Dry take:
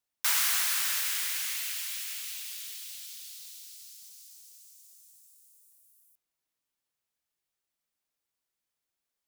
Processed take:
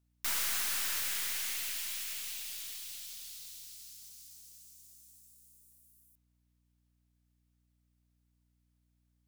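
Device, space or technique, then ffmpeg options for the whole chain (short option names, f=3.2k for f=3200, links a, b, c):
valve amplifier with mains hum: -af "aeval=exprs='(tanh(31.6*val(0)+0.45)-tanh(0.45))/31.6':c=same,aeval=exprs='val(0)+0.000224*(sin(2*PI*60*n/s)+sin(2*PI*2*60*n/s)/2+sin(2*PI*3*60*n/s)/3+sin(2*PI*4*60*n/s)/4+sin(2*PI*5*60*n/s)/5)':c=same"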